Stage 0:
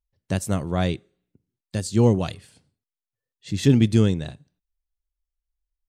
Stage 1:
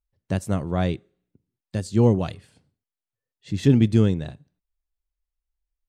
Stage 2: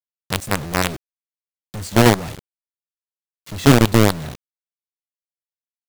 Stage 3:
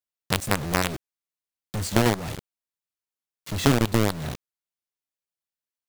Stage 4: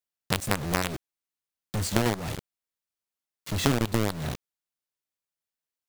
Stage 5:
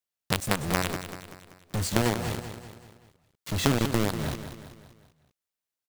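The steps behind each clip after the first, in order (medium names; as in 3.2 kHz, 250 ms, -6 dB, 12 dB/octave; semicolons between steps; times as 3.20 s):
treble shelf 3.1 kHz -8.5 dB
companded quantiser 2-bit; trim -2.5 dB
compression 3:1, threshold -19 dBFS, peak gain reduction 10.5 dB; trim +1 dB
compression 2:1, threshold -22 dBFS, peak gain reduction 5.5 dB
feedback delay 192 ms, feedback 49%, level -10 dB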